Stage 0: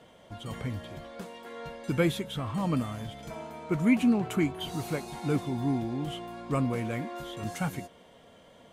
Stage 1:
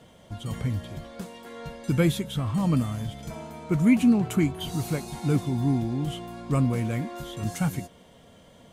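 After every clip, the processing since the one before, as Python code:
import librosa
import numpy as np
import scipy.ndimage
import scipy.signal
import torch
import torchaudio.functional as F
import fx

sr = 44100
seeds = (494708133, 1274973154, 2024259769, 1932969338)

y = fx.bass_treble(x, sr, bass_db=8, treble_db=6)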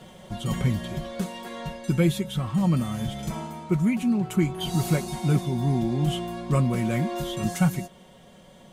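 y = x + 0.6 * np.pad(x, (int(5.4 * sr / 1000.0), 0))[:len(x)]
y = fx.rider(y, sr, range_db=5, speed_s=0.5)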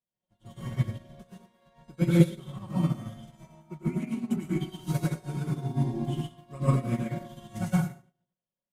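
y = fx.rev_plate(x, sr, seeds[0], rt60_s=1.0, hf_ratio=0.6, predelay_ms=85, drr_db=-6.0)
y = fx.upward_expand(y, sr, threshold_db=-41.0, expansion=2.5)
y = y * 10.0 ** (-4.0 / 20.0)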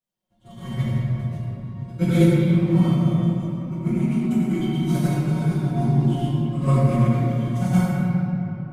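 y = fx.room_shoebox(x, sr, seeds[1], volume_m3=180.0, walls='hard', distance_m=1.0)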